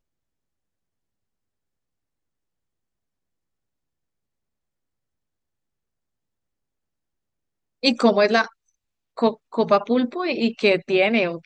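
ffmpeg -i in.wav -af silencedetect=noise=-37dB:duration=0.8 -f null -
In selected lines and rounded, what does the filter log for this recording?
silence_start: 0.00
silence_end: 7.83 | silence_duration: 7.83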